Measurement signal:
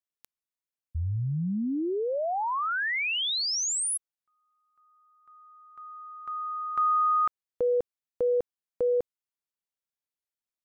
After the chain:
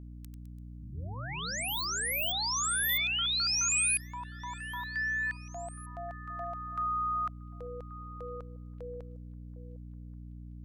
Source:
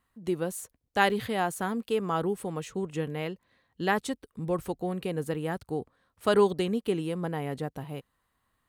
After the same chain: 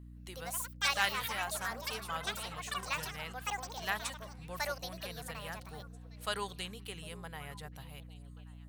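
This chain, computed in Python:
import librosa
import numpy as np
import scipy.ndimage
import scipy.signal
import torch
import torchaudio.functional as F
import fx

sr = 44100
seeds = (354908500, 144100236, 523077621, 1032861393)

p1 = fx.echo_pitch(x, sr, ms=166, semitones=6, count=3, db_per_echo=-3.0)
p2 = fx.tone_stack(p1, sr, knobs='10-0-10')
p3 = fx.add_hum(p2, sr, base_hz=60, snr_db=10)
y = p3 + fx.echo_stepped(p3, sr, ms=377, hz=180.0, octaves=1.4, feedback_pct=70, wet_db=-11, dry=0)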